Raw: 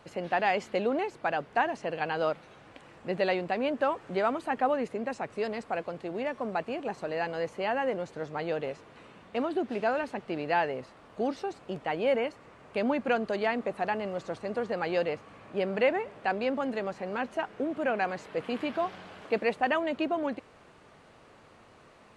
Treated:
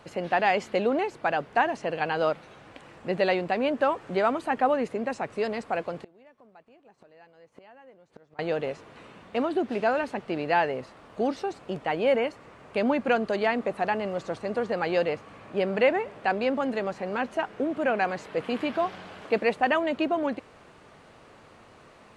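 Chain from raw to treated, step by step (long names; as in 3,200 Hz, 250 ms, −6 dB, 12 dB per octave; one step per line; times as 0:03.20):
0:05.97–0:08.39: gate with flip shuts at −31 dBFS, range −26 dB
level +3.5 dB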